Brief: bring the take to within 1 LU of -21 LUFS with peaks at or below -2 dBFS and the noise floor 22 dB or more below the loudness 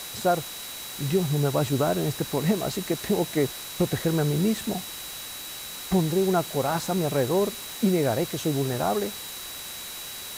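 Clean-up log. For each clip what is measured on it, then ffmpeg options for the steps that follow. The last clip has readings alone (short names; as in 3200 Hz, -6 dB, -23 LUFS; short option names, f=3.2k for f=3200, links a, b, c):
steady tone 3900 Hz; tone level -41 dBFS; noise floor -38 dBFS; noise floor target -49 dBFS; loudness -26.5 LUFS; peak -11.0 dBFS; loudness target -21.0 LUFS
-> -af "bandreject=f=3.9k:w=30"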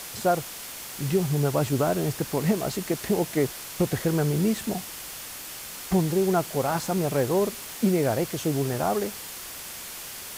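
steady tone none; noise floor -39 dBFS; noise floor target -49 dBFS
-> -af "afftdn=nr=10:nf=-39"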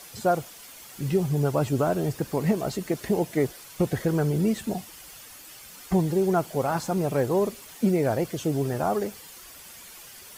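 noise floor -46 dBFS; noise floor target -49 dBFS
-> -af "afftdn=nr=6:nf=-46"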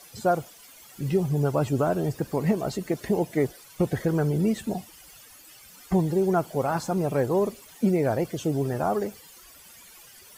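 noise floor -50 dBFS; loudness -26.5 LUFS; peak -11.5 dBFS; loudness target -21.0 LUFS
-> -af "volume=5.5dB"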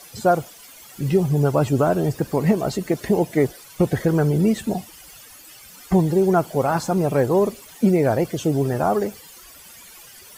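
loudness -21.0 LUFS; peak -6.0 dBFS; noise floor -45 dBFS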